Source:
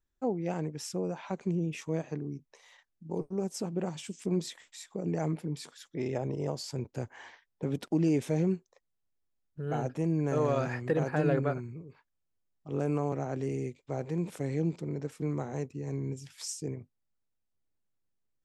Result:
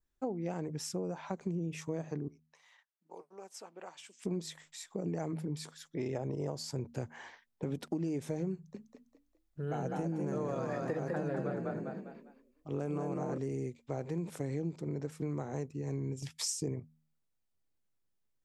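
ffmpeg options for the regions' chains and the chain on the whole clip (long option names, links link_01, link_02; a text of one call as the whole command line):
ffmpeg -i in.wav -filter_complex "[0:a]asettb=1/sr,asplit=3[link_01][link_02][link_03];[link_01]atrim=end=2.284[link_04];[link_02]atrim=start=2.28:end=4.23,asetpts=PTS-STARTPTS,afade=type=in:duration=0.004:curve=qsin,afade=type=out:start_time=1.946:duration=0.004:curve=qsin,highpass=990,highshelf=frequency=2100:gain=-9.5[link_05];[link_03]atrim=start=4.226[link_06];[link_04][link_05]acrossfade=duration=0.004:curve1=hsin:curve2=qsin[link_07];[link_07][link_06]acrossfade=duration=0.004:curve1=qsin:curve2=hsin,asettb=1/sr,asplit=3[link_08][link_09][link_10];[link_08]atrim=end=8.544[link_11];[link_09]atrim=start=8.54:end=13.38,asetpts=PTS-STARTPTS,afade=type=in:duration=0.004:curve=qsin,afade=type=out:start_time=4.836:duration=0.004:curve=qsin,bandreject=frequency=60:width_type=h:width=6,bandreject=frequency=120:width_type=h:width=6,bandreject=frequency=180:width_type=h:width=6,asplit=5[link_12][link_13][link_14][link_15][link_16];[link_13]adelay=201,afreqshift=36,volume=-3dB[link_17];[link_14]adelay=402,afreqshift=72,volume=-12.6dB[link_18];[link_15]adelay=603,afreqshift=108,volume=-22.3dB[link_19];[link_16]adelay=804,afreqshift=144,volume=-31.9dB[link_20];[link_12][link_17][link_18][link_19][link_20]amix=inputs=5:normalize=0,atrim=end_sample=213444[link_21];[link_10]atrim=start=13.376[link_22];[link_11][link_21]acrossfade=duration=0.004:curve1=hsin:curve2=qsin[link_23];[link_23][link_22]acrossfade=duration=0.004:curve1=qsin:curve2=hsin,asettb=1/sr,asplit=3[link_24][link_25][link_26];[link_24]atrim=end=16.224[link_27];[link_25]atrim=start=16.22:end=16.8,asetpts=PTS-STARTPTS,afade=type=in:duration=0.004:curve=qsin,afade=type=out:start_time=0.576:duration=0.004:curve=qsin,bandreject=frequency=1500:width=6.9,agate=range=-37dB:threshold=-55dB:ratio=16:release=100:detection=peak,acontrast=83[link_28];[link_26]atrim=start=16.796[link_29];[link_27][link_28]acrossfade=duration=0.004:curve1=hsin:curve2=qsin[link_30];[link_30][link_29]acrossfade=duration=0.004:curve1=qsin:curve2=hsin,bandreject=frequency=78.24:width_type=h:width=4,bandreject=frequency=156.48:width_type=h:width=4,bandreject=frequency=234.72:width_type=h:width=4,adynamicequalizer=threshold=0.00126:dfrequency=2800:dqfactor=1.5:tfrequency=2800:tqfactor=1.5:attack=5:release=100:ratio=0.375:range=3.5:mode=cutabove:tftype=bell,acompressor=threshold=-32dB:ratio=6" out.wav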